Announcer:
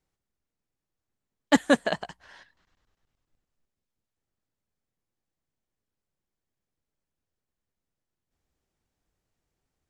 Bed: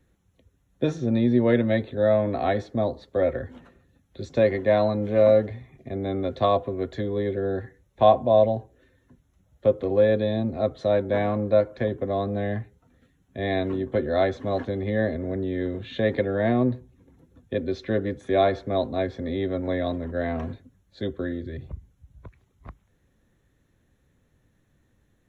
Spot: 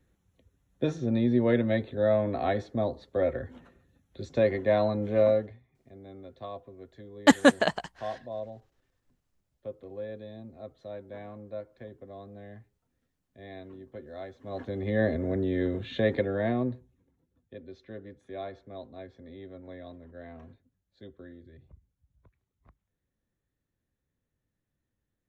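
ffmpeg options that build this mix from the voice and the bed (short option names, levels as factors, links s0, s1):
-filter_complex "[0:a]adelay=5750,volume=1.26[s0];[1:a]volume=5.31,afade=t=out:st=5.2:d=0.41:silence=0.177828,afade=t=in:st=14.39:d=0.72:silence=0.11885,afade=t=out:st=15.75:d=1.41:silence=0.133352[s1];[s0][s1]amix=inputs=2:normalize=0"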